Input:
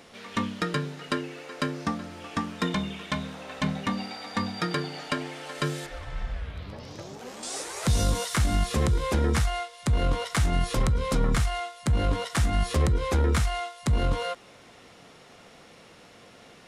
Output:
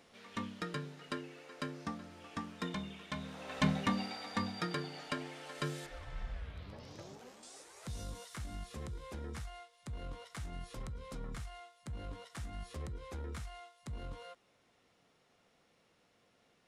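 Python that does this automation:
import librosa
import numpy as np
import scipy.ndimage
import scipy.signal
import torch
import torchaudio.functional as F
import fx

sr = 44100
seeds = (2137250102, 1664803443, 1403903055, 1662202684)

y = fx.gain(x, sr, db=fx.line((3.11, -12.0), (3.64, -2.5), (4.76, -9.5), (7.11, -9.5), (7.54, -20.0)))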